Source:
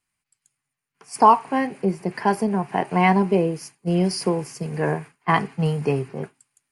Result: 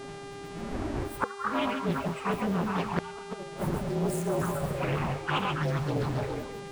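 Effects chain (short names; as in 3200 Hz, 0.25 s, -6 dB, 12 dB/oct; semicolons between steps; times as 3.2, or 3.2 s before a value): inharmonic rescaling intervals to 118%; wind noise 230 Hz -33 dBFS; split-band echo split 580 Hz, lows 0.211 s, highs 0.137 s, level -5.5 dB; flipped gate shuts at -9 dBFS, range -29 dB; AGC gain up to 8 dB; tilt +2 dB/oct; envelope flanger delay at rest 8.1 ms, full sweep at -14 dBFS; resonant high shelf 2500 Hz -7 dB, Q 1.5; notch 480 Hz, Q 12; reverse; compressor 6:1, threshold -26 dBFS, peak gain reduction 11.5 dB; reverse; buzz 400 Hz, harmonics 27, -43 dBFS -6 dB/oct; Doppler distortion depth 0.75 ms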